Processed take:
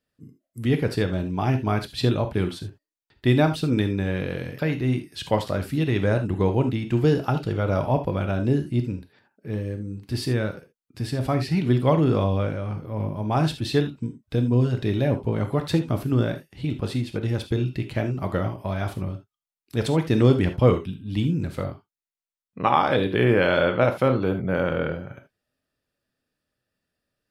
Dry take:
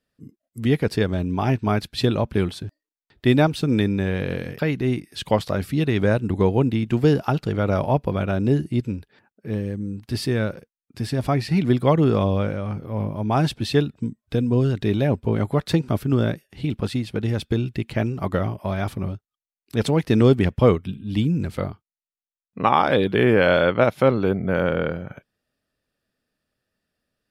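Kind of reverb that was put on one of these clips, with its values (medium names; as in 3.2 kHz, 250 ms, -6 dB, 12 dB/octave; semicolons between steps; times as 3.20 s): gated-style reverb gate 100 ms flat, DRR 6.5 dB; trim -3 dB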